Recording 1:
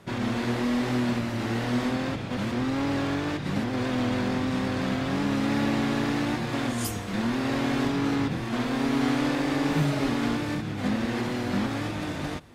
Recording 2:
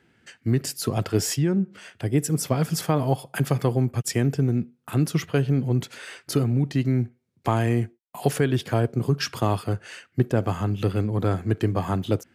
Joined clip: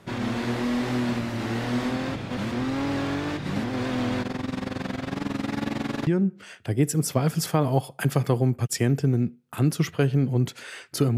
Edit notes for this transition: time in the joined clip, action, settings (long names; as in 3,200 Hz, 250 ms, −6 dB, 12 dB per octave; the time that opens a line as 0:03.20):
recording 1
0:04.22–0:06.07: amplitude modulation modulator 22 Hz, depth 75%
0:06.07: continue with recording 2 from 0:01.42